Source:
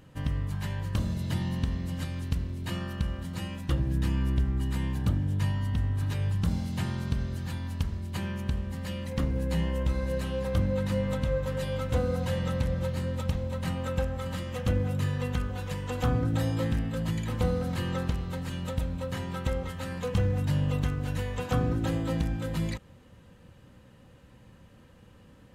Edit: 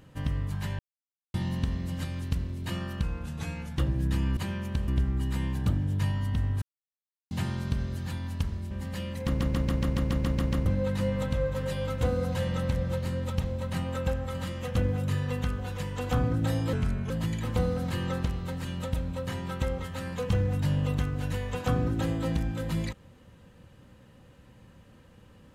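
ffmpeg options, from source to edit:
-filter_complex "[0:a]asplit=22[a][b][c][d][e][f][g][h][i][j][k][l][m][n][o][p][q][r][s][t][u][v];[a]atrim=end=0.79,asetpts=PTS-STARTPTS,afade=t=out:st=0.786:d=0.004:c=hsin[w];[b]atrim=start=0.79:end=1.34,asetpts=PTS-STARTPTS,volume=0[x];[c]atrim=start=1.34:end=3.034,asetpts=PTS-STARTPTS,afade=t=in:d=0.004:c=hsin[y];[d]atrim=start=3.03:end=3.68,asetpts=PTS-STARTPTS,asetrate=38808,aresample=44100[z];[e]atrim=start=3.676:end=4.282[aa];[f]atrim=start=8.108:end=8.622[ab];[g]atrim=start=4.278:end=6.02,asetpts=PTS-STARTPTS,afade=t=out:st=1.738:d=0.004:c=hsin[ac];[h]atrim=start=6.02:end=6.71,asetpts=PTS-STARTPTS,volume=0[ad];[i]atrim=start=6.71:end=8.112,asetpts=PTS-STARTPTS,afade=t=in:d=0.004:c=hsin[ae];[j]atrim=start=8.618:end=9.312[af];[k]atrim=start=9.168:end=9.312[ag];[l]atrim=start=9.168:end=9.312[ah];[m]atrim=start=9.168:end=9.312[ai];[n]atrim=start=9.168:end=9.312[aj];[o]atrim=start=9.168:end=9.312[ak];[p]atrim=start=9.168:end=9.312[al];[q]atrim=start=9.168:end=9.312[am];[r]atrim=start=9.168:end=9.312[an];[s]atrim=start=9.168:end=9.312[ao];[t]atrim=start=10.568:end=16.644[ap];[u]atrim=start=16.64:end=16.95,asetpts=PTS-STARTPTS,asetrate=36603,aresample=44100,atrim=end_sample=16471,asetpts=PTS-STARTPTS[aq];[v]atrim=start=16.946[ar];[w][x][y]concat=n=3:v=0:a=1[as];[as][z]acrossfade=d=0.004:c1=hsin:c2=hsin[at];[at][aa]acrossfade=d=0.004:c1=hsin:c2=hsin[au];[au][ab]acrossfade=d=0.004:c1=hsin:c2=hsin[av];[ac][ad][ae]concat=n=3:v=0:a=1[aw];[av][aw]acrossfade=d=0.004:c1=hsin:c2=hsin[ax];[ax][af]acrossfade=d=0.004:c1=hsin:c2=hsin[ay];[ay][ag]acrossfade=d=0.004:c1=hsin:c2=hsin[az];[az][ah]acrossfade=d=0.004:c1=hsin:c2=hsin[ba];[ba][ai]acrossfade=d=0.004:c1=hsin:c2=hsin[bb];[bb][aj]acrossfade=d=0.004:c1=hsin:c2=hsin[bc];[bc][ak]acrossfade=d=0.004:c1=hsin:c2=hsin[bd];[bd][al]acrossfade=d=0.004:c1=hsin:c2=hsin[be];[be][am]acrossfade=d=0.004:c1=hsin:c2=hsin[bf];[bf][an]acrossfade=d=0.004:c1=hsin:c2=hsin[bg];[bg][ao]acrossfade=d=0.004:c1=hsin:c2=hsin[bh];[bh][ap]acrossfade=d=0.004:c1=hsin:c2=hsin[bi];[bi][aq]acrossfade=d=0.004:c1=hsin:c2=hsin[bj];[bj][ar]acrossfade=d=0.004:c1=hsin:c2=hsin"

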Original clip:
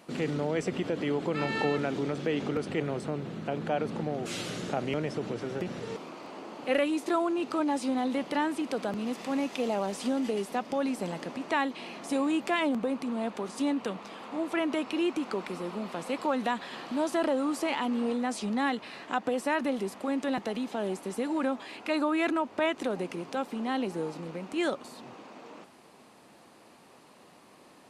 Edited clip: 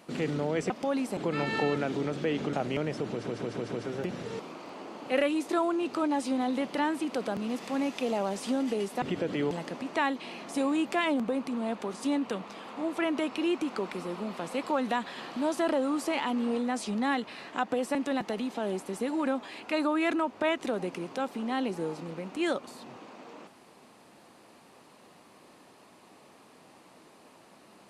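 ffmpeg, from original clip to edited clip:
-filter_complex "[0:a]asplit=11[a][b][c][d][e][f][g][h][i][j][k];[a]atrim=end=0.702[l];[b]atrim=start=10.588:end=11.062[m];[c]atrim=start=1.188:end=2.552[n];[d]atrim=start=4.698:end=5.442[o];[e]atrim=start=5.288:end=5.442[p];[f]atrim=start=5.288:end=5.442[q];[g]atrim=start=5.288:end=5.442[r];[h]atrim=start=5.288:end=10.592[s];[i]atrim=start=0.698:end=1.192[t];[j]atrim=start=11.058:end=19.502[u];[k]atrim=start=20.118[v];[l][m]acrossfade=d=0.004:c1=hsin:c2=hsin[w];[w][n]acrossfade=d=0.004:c1=hsin:c2=hsin[x];[x][o]acrossfade=d=0.004:c1=hsin:c2=hsin[y];[y][p]acrossfade=d=0.004:c1=hsin:c2=hsin[z];[z][q]acrossfade=d=0.004:c1=hsin:c2=hsin[aa];[aa][r]acrossfade=d=0.004:c1=hsin:c2=hsin[ab];[ab][s]acrossfade=d=0.004:c1=hsin:c2=hsin[ac];[ac][t]acrossfade=d=0.004:c1=hsin:c2=hsin[ad];[ad][u]acrossfade=d=0.004:c1=hsin:c2=hsin[ae];[ae][v]acrossfade=d=0.004:c1=hsin:c2=hsin"

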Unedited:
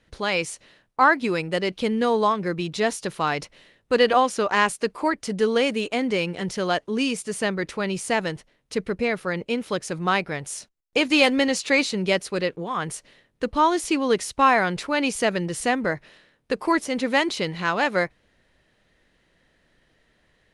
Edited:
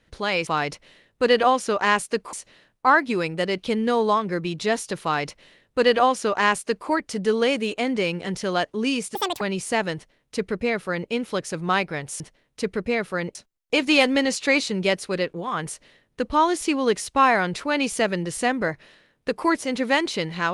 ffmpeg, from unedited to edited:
-filter_complex "[0:a]asplit=7[a][b][c][d][e][f][g];[a]atrim=end=0.472[h];[b]atrim=start=3.168:end=5.032[i];[c]atrim=start=0.468:end=7.294[j];[d]atrim=start=7.29:end=7.79,asetpts=PTS-STARTPTS,asetrate=84672,aresample=44100,atrim=end_sample=11484,asetpts=PTS-STARTPTS[k];[e]atrim=start=7.786:end=10.582[l];[f]atrim=start=8.328:end=9.482[m];[g]atrim=start=10.578[n];[h][i]acrossfade=d=0.004:c1=hsin:c2=hsin[o];[o][j]acrossfade=d=0.004:c1=hsin:c2=hsin[p];[p][k]acrossfade=d=0.004:c1=hsin:c2=hsin[q];[q][l]acrossfade=d=0.004:c1=hsin:c2=hsin[r];[r][m]acrossfade=d=0.004:c1=hsin:c2=hsin[s];[s][n]acrossfade=d=0.004:c1=hsin:c2=hsin"

